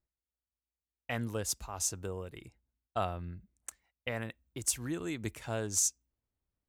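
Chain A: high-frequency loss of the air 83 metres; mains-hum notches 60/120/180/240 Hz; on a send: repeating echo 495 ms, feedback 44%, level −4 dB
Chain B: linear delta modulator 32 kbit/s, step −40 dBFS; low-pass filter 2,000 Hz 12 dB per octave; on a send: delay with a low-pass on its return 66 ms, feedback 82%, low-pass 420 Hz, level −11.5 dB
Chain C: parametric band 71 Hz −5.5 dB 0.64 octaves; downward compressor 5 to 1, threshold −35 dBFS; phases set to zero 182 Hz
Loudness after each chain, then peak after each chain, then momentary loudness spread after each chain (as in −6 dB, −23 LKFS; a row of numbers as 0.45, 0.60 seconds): −38.0, −41.0, −43.5 LKFS; −18.5, −20.0, −15.0 dBFS; 7, 12, 11 LU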